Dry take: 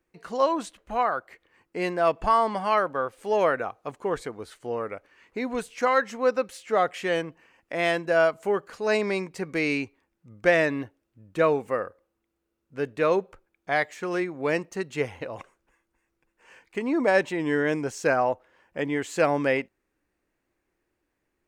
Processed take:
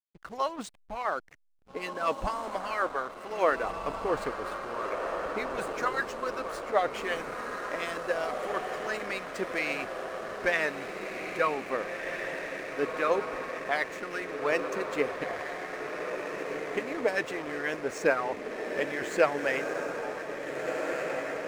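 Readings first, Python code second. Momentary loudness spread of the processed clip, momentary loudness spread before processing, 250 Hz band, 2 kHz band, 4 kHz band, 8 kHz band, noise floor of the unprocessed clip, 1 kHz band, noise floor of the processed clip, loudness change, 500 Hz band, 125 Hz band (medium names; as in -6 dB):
8 LU, 14 LU, -8.0 dB, -2.0 dB, -2.5 dB, -2.0 dB, -79 dBFS, -4.5 dB, -45 dBFS, -5.5 dB, -5.0 dB, -10.0 dB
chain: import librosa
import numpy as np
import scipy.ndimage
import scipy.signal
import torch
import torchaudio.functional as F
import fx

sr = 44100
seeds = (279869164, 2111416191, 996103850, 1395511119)

y = fx.hpss(x, sr, part='harmonic', gain_db=-15)
y = fx.echo_diffused(y, sr, ms=1738, feedback_pct=61, wet_db=-4)
y = fx.backlash(y, sr, play_db=-40.5)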